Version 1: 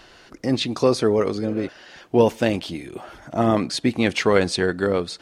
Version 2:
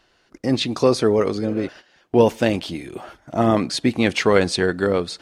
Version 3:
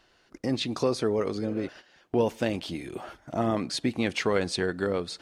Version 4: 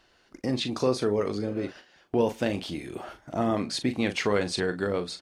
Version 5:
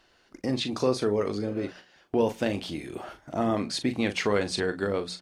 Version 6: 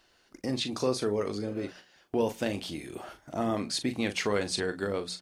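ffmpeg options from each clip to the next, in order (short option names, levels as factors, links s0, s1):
-af "agate=range=0.2:threshold=0.01:ratio=16:detection=peak,volume=1.19"
-af "acompressor=threshold=0.0282:ratio=1.5,volume=0.75"
-filter_complex "[0:a]asplit=2[s0][s1];[s1]adelay=39,volume=0.316[s2];[s0][s2]amix=inputs=2:normalize=0"
-af "bandreject=f=60:t=h:w=6,bandreject=f=120:t=h:w=6,bandreject=f=180:t=h:w=6"
-af "highshelf=f=5800:g=8.5,volume=0.668"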